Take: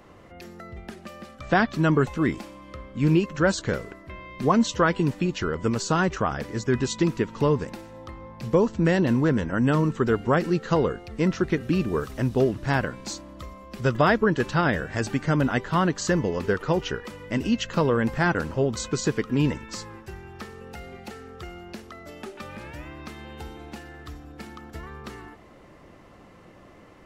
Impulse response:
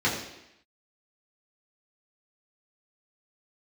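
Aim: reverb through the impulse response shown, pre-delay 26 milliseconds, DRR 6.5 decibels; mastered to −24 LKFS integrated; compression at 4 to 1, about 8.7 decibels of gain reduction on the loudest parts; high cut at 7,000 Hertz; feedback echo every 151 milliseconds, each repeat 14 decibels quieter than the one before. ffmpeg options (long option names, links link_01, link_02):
-filter_complex "[0:a]lowpass=7000,acompressor=threshold=-26dB:ratio=4,aecho=1:1:151|302:0.2|0.0399,asplit=2[link_01][link_02];[1:a]atrim=start_sample=2205,adelay=26[link_03];[link_02][link_03]afir=irnorm=-1:irlink=0,volume=-20dB[link_04];[link_01][link_04]amix=inputs=2:normalize=0,volume=6.5dB"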